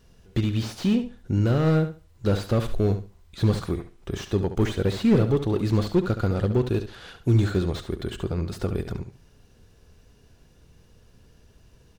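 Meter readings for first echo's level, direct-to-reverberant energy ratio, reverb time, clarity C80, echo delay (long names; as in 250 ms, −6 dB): −10.5 dB, no reverb audible, no reverb audible, no reverb audible, 70 ms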